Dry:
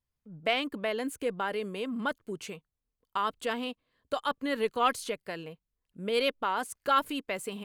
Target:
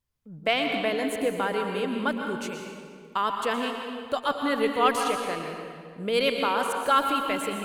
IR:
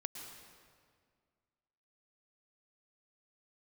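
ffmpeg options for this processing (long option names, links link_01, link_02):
-filter_complex "[1:a]atrim=start_sample=2205,asetrate=41895,aresample=44100[link_01];[0:a][link_01]afir=irnorm=-1:irlink=0,volume=6.5dB"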